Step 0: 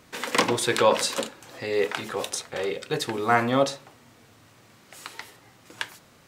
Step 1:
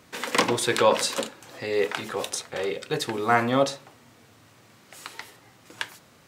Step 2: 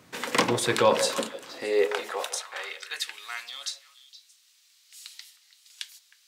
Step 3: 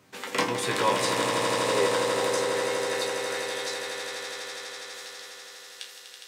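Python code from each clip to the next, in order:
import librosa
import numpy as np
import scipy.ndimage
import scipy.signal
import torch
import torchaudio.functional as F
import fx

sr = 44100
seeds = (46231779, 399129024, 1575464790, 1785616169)

y1 = scipy.signal.sosfilt(scipy.signal.butter(2, 58.0, 'highpass', fs=sr, output='sos'), x)
y2 = fx.echo_stepped(y1, sr, ms=156, hz=550.0, octaves=1.4, feedback_pct=70, wet_db=-8.5)
y2 = fx.filter_sweep_highpass(y2, sr, from_hz=110.0, to_hz=4000.0, start_s=0.93, end_s=3.5, q=1.3)
y2 = y2 * 10.0 ** (-1.5 / 20.0)
y3 = fx.resonator_bank(y2, sr, root=36, chord='fifth', decay_s=0.25)
y3 = fx.echo_swell(y3, sr, ms=82, loudest=8, wet_db=-8)
y3 = y3 * 10.0 ** (5.5 / 20.0)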